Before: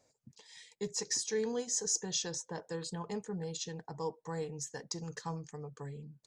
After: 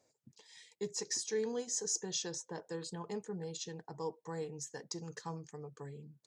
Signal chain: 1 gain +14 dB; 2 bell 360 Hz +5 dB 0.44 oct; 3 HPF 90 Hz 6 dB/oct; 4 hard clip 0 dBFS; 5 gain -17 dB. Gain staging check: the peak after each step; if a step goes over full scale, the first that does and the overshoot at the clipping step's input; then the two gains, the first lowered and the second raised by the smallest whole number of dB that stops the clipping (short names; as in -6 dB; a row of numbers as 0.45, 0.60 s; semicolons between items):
-3.5, -3.5, -3.5, -3.5, -20.5 dBFS; no overload